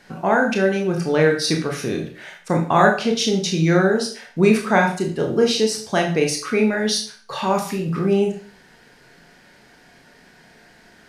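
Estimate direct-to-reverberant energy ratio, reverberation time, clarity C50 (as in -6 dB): 1.5 dB, 0.45 s, 8.0 dB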